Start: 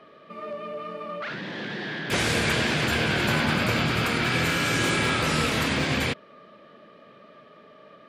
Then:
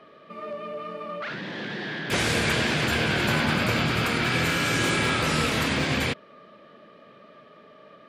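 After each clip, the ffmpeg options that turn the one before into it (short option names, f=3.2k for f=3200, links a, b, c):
-af anull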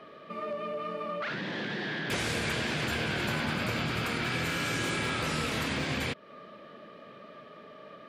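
-af "acompressor=threshold=-34dB:ratio=2.5,volume=1.5dB"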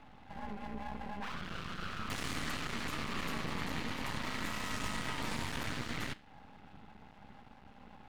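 -af "afreqshift=-380,flanger=delay=9.1:depth=1.9:regen=88:speed=1:shape=triangular,aeval=exprs='max(val(0),0)':c=same,volume=1.5dB"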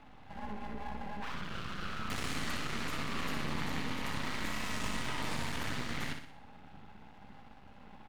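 -af "aecho=1:1:61|122|183|244|305|366:0.447|0.219|0.107|0.0526|0.0258|0.0126"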